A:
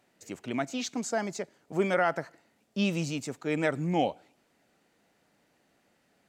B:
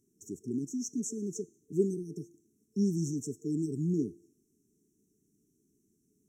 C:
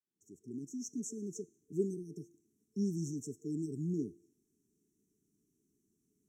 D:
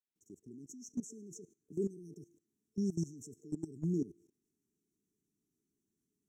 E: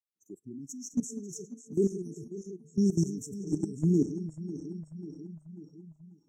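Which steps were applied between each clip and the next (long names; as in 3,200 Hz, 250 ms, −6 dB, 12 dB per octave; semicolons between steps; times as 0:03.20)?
hum removal 342.4 Hz, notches 32; brick-wall band-stop 450–5,400 Hz
fade in at the beginning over 0.87 s; level −5.5 dB
output level in coarse steps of 18 dB; level +4 dB
feedback delay that plays each chunk backwards 271 ms, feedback 81%, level −13 dB; noise reduction from a noise print of the clip's start 19 dB; level +9 dB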